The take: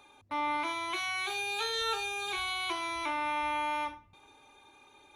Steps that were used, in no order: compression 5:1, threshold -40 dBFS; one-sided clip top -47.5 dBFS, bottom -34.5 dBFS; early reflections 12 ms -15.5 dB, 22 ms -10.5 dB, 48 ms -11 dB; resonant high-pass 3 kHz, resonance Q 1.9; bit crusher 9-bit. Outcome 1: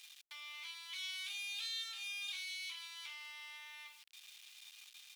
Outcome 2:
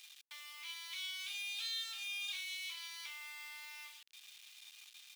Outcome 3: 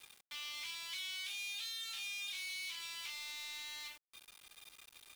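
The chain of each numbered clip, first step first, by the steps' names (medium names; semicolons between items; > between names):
early reflections > bit crusher > compression > one-sided clip > resonant high-pass; compression > one-sided clip > early reflections > bit crusher > resonant high-pass; early reflections > one-sided clip > resonant high-pass > bit crusher > compression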